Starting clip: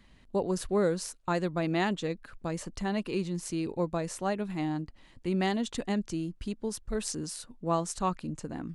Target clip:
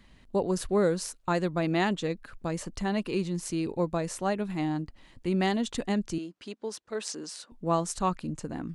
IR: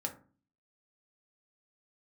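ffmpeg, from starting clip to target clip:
-filter_complex "[0:a]asettb=1/sr,asplit=3[a][b][c];[a]atrim=end=6.184[d];[b]atrim=start=6.18:end=7.52,asetpts=PTS-STARTPTS,afade=t=in:d=0.004:c=qsin,afade=t=out:st=1.336:d=0.004:c=qsin,highpass=370,lowpass=6.8k[e];[c]atrim=start=7.516[f];[d][e]acrossfade=d=0.004:c1=hsin:c2=qsin[g];[g][f]acrossfade=d=0.004:c1=qsin:c2=hsin,volume=2dB"

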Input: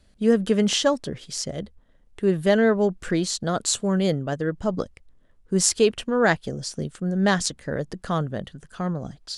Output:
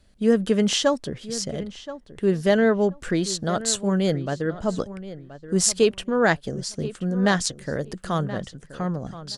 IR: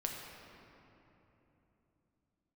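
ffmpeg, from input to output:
-filter_complex "[0:a]asettb=1/sr,asplit=3[a][b][c];[a]atrim=end=7.574[d];[b]atrim=start=7.57:end=8.25,asetpts=PTS-STARTPTS,afade=t=in:d=0.004:c=qsin,afade=t=out:st=0.676:d=0.004:c=qsin,highshelf=f=7.9k:g=8[e];[c]atrim=start=8.246[f];[d][e]acrossfade=d=0.004:c1=hsin:c2=qsin[g];[g][f]acrossfade=d=0.004:c1=qsin:c2=hsin,asplit=2[h][i];[i]adelay=1026,lowpass=f=2.9k:p=1,volume=-14.5dB,asplit=2[j][k];[k]adelay=1026,lowpass=f=2.9k:p=1,volume=0.18[l];[j][l]amix=inputs=2:normalize=0[m];[h][m]amix=inputs=2:normalize=0"

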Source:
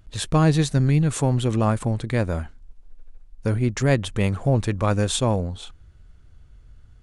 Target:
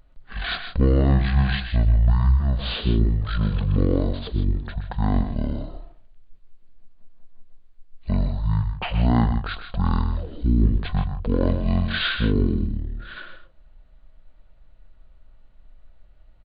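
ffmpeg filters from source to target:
-af "aecho=1:1:53|68:0.316|0.224,asetrate=18846,aresample=44100"

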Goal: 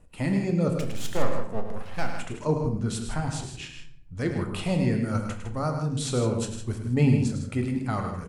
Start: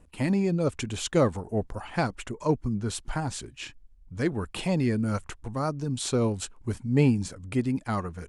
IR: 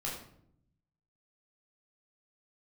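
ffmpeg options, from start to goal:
-filter_complex "[0:a]asettb=1/sr,asplit=3[a][b][c];[a]atrim=end=0.784[d];[b]atrim=start=0.78:end=2.11,asetpts=PTS-STARTPTS,afade=t=in:d=0.004:c=qsin,afade=t=out:st=1.326:d=0.004:c=qsin,aeval=exprs='max(val(0),0)':c=same[e];[c]atrim=start=2.106[f];[d][e]acrossfade=d=0.004:c1=hsin:c2=qsin[g];[g][f]acrossfade=d=0.004:c1=qsin:c2=hsin,aecho=1:1:105|157.4:0.355|0.316,asplit=2[h][i];[1:a]atrim=start_sample=2205[j];[i][j]afir=irnorm=-1:irlink=0,volume=-4.5dB[k];[h][k]amix=inputs=2:normalize=0,volume=-4dB"

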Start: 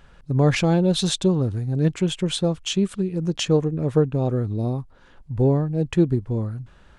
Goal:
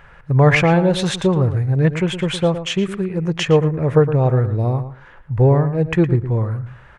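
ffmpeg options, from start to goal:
-filter_complex "[0:a]equalizer=f=125:t=o:w=1:g=6,equalizer=f=250:t=o:w=1:g=-6,equalizer=f=500:t=o:w=1:g=4,equalizer=f=1k:t=o:w=1:g=6,equalizer=f=2k:t=o:w=1:g=11,equalizer=f=4k:t=o:w=1:g=-5,equalizer=f=8k:t=o:w=1:g=-4,asplit=2[a][b];[b]adelay=113,lowpass=f=3.1k:p=1,volume=-11dB,asplit=2[c][d];[d]adelay=113,lowpass=f=3.1k:p=1,volume=0.17[e];[a][c][e]amix=inputs=3:normalize=0,volume=2dB"

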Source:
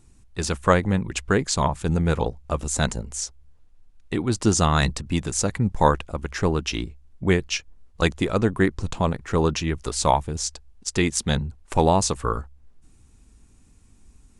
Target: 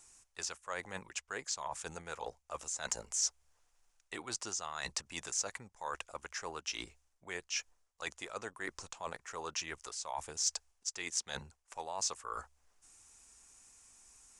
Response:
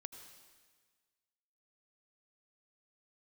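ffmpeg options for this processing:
-filter_complex "[0:a]acrossover=split=6700[a][b];[b]acompressor=threshold=-42dB:ratio=4:attack=1:release=60[c];[a][c]amix=inputs=2:normalize=0,acrossover=split=570 6700:gain=0.0708 1 0.158[d][e][f];[d][e][f]amix=inputs=3:normalize=0,areverse,acompressor=threshold=-40dB:ratio=5,areverse,aexciter=amount=2.9:drive=9:freq=5.6k"

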